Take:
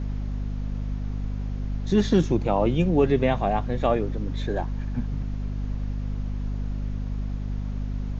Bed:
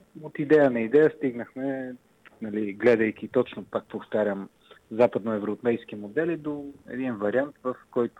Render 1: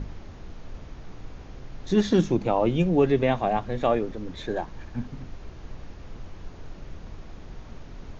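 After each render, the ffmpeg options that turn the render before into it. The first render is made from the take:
-af "bandreject=f=50:t=h:w=6,bandreject=f=100:t=h:w=6,bandreject=f=150:t=h:w=6,bandreject=f=200:t=h:w=6,bandreject=f=250:t=h:w=6"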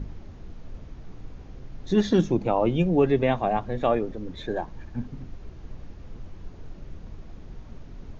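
-af "afftdn=nr=6:nf=-43"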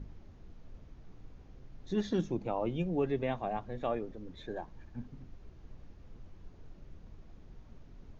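-af "volume=0.282"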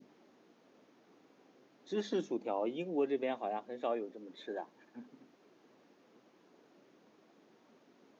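-af "highpass=f=260:w=0.5412,highpass=f=260:w=1.3066,adynamicequalizer=threshold=0.00251:dfrequency=1300:dqfactor=0.94:tfrequency=1300:tqfactor=0.94:attack=5:release=100:ratio=0.375:range=2:mode=cutabove:tftype=bell"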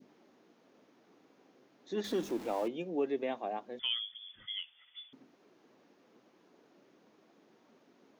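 -filter_complex "[0:a]asettb=1/sr,asplit=3[s0][s1][s2];[s0]atrim=end=2.044[s3];[s1]atrim=start=2.04:end=2.68,asetpts=PTS-STARTPTS,afade=t=in:d=0.004:c=qsin,afade=t=out:st=0.636:d=0.004:c=qsin,aeval=exprs='val(0)+0.5*0.0075*sgn(val(0))':c=same[s4];[s2]atrim=start=2.676[s5];[s3][s4]acrossfade=d=0.004:c1=hsin:c2=qsin[s6];[s6][s5]acrossfade=d=0.004:c1=qsin:c2=hsin,asettb=1/sr,asplit=3[s7][s8][s9];[s7]atrim=end=3.794[s10];[s8]atrim=start=3.79:end=5.13,asetpts=PTS-STARTPTS,afade=t=in:d=0.004:c=qsin,afade=t=out:st=1.336:d=0.004:c=qsin,lowpass=f=3100:t=q:w=0.5098,lowpass=f=3100:t=q:w=0.6013,lowpass=f=3100:t=q:w=0.9,lowpass=f=3100:t=q:w=2.563,afreqshift=-3700[s11];[s9]atrim=start=5.126[s12];[s10][s11]acrossfade=d=0.004:c1=hsin:c2=qsin[s13];[s13][s12]acrossfade=d=0.004:c1=qsin:c2=hsin"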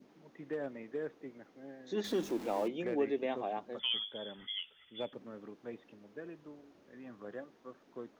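-filter_complex "[1:a]volume=0.0944[s0];[0:a][s0]amix=inputs=2:normalize=0"

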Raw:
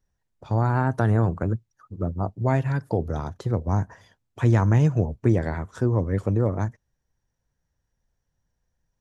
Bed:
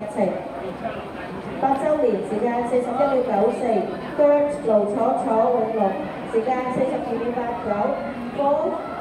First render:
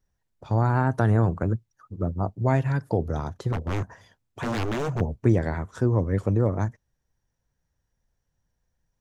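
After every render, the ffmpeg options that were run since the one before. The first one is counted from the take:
-filter_complex "[0:a]asettb=1/sr,asplit=3[s0][s1][s2];[s0]atrim=end=3.524[s3];[s1]atrim=start=3.52:end=5.01,asetpts=PTS-STARTPTS,afade=t=in:d=0.004:c=qsin,afade=t=out:st=1.486:d=0.004:c=qsin,aeval=exprs='0.0794*(abs(mod(val(0)/0.0794+3,4)-2)-1)':c=same[s4];[s2]atrim=start=5.006[s5];[s3][s4]acrossfade=d=0.004:c1=hsin:c2=qsin[s6];[s6][s5]acrossfade=d=0.004:c1=qsin:c2=hsin"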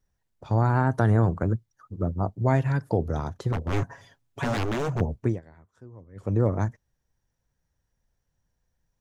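-filter_complex "[0:a]asettb=1/sr,asplit=3[s0][s1][s2];[s0]atrim=end=0.774[s3];[s1]atrim=start=0.77:end=2.59,asetpts=PTS-STARTPTS,afade=t=in:d=0.004:c=qsin,afade=t=out:st=1.816:d=0.004:c=qsin,bandreject=f=2600:w=12[s4];[s2]atrim=start=2.586[s5];[s3][s4]acrossfade=d=0.004:c1=hsin:c2=qsin[s6];[s6][s5]acrossfade=d=0.004:c1=qsin:c2=hsin,asettb=1/sr,asplit=3[s7][s8][s9];[s7]atrim=end=3.724[s10];[s8]atrim=start=3.72:end=4.57,asetpts=PTS-STARTPTS,afade=t=in:d=0.004:c=qsin,afade=t=out:st=0.846:d=0.004:c=qsin,aecho=1:1:7.2:0.76,atrim=end_sample=37485[s11];[s9]atrim=start=4.566[s12];[s10][s11]acrossfade=d=0.004:c1=hsin:c2=qsin[s13];[s13][s12]acrossfade=d=0.004:c1=qsin:c2=hsin,asplit=3[s14][s15][s16];[s14]atrim=end=5.41,asetpts=PTS-STARTPTS,afade=t=out:st=5.17:d=0.24:silence=0.0630957[s17];[s15]atrim=start=5.41:end=6.15,asetpts=PTS-STARTPTS,volume=0.0631[s18];[s16]atrim=start=6.15,asetpts=PTS-STARTPTS,afade=t=in:d=0.24:silence=0.0630957[s19];[s17][s18][s19]concat=n=3:v=0:a=1"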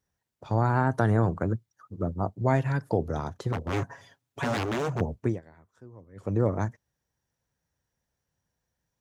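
-af "highpass=68,lowshelf=f=190:g=-4"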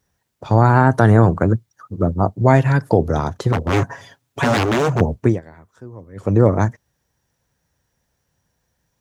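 -af "volume=3.76,alimiter=limit=0.891:level=0:latency=1"

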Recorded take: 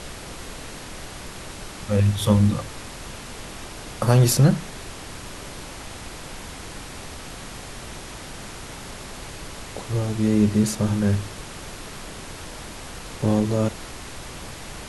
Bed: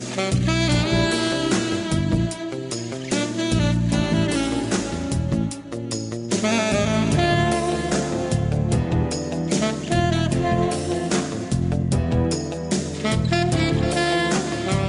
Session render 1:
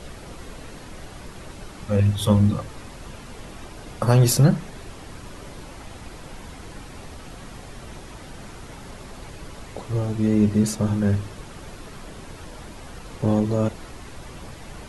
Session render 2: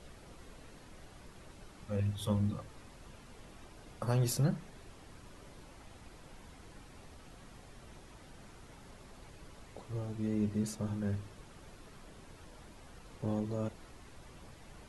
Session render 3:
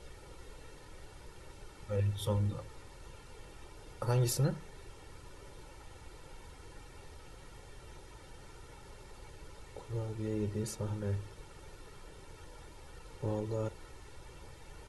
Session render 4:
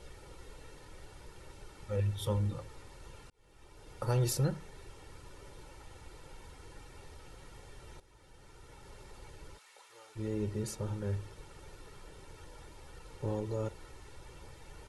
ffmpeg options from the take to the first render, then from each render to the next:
-af "afftdn=nr=8:nf=-38"
-af "volume=0.188"
-af "aecho=1:1:2.2:0.6"
-filter_complex "[0:a]asplit=3[s0][s1][s2];[s0]afade=t=out:st=9.57:d=0.02[s3];[s1]highpass=1200,afade=t=in:st=9.57:d=0.02,afade=t=out:st=10.15:d=0.02[s4];[s2]afade=t=in:st=10.15:d=0.02[s5];[s3][s4][s5]amix=inputs=3:normalize=0,asplit=3[s6][s7][s8];[s6]atrim=end=3.3,asetpts=PTS-STARTPTS,afade=t=out:st=3.296:d=0.004:c=hsin[s9];[s7]atrim=start=3.3:end=8,asetpts=PTS-STARTPTS,afade=t=in:d=0.69,afade=t=out:st=4.696:d=0.004:c=hsin:silence=0.237137[s10];[s8]atrim=start=8,asetpts=PTS-STARTPTS,afade=t=in:d=0.97:silence=0.237137[s11];[s9][s10][s11]concat=n=3:v=0:a=1"

